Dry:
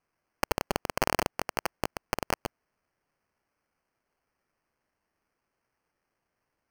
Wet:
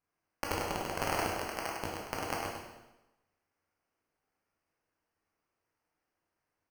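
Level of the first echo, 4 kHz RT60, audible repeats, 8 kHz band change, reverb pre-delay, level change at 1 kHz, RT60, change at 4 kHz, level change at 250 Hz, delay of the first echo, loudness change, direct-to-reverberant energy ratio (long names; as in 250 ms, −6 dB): −5.5 dB, 0.90 s, 1, −3.5 dB, 7 ms, −3.0 dB, 0.95 s, −3.5 dB, −3.0 dB, 102 ms, −3.5 dB, −3.5 dB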